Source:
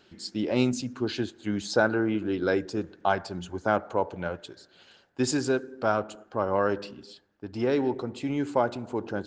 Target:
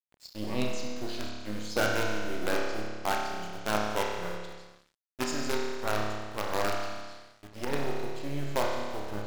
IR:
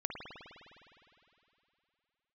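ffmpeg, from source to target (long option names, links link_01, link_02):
-filter_complex "[0:a]acrossover=split=2900[link_01][link_02];[link_01]acrusher=bits=4:dc=4:mix=0:aa=0.000001[link_03];[link_03][link_02]amix=inputs=2:normalize=0[link_04];[1:a]atrim=start_sample=2205,asetrate=79380,aresample=44100[link_05];[link_04][link_05]afir=irnorm=-1:irlink=0,aeval=exprs='sgn(val(0))*max(abs(val(0))-0.00422,0)':channel_layout=same"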